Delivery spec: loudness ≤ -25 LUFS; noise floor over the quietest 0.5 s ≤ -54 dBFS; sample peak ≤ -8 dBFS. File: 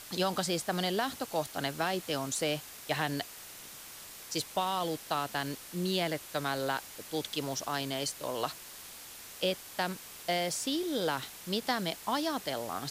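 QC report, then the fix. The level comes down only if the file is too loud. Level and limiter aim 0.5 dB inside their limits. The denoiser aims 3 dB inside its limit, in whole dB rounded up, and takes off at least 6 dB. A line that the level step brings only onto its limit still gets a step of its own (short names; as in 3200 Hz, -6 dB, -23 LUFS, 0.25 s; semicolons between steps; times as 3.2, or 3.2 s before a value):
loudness -33.5 LUFS: OK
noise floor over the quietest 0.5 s -48 dBFS: fail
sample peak -18.5 dBFS: OK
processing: denoiser 9 dB, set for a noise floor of -48 dBFS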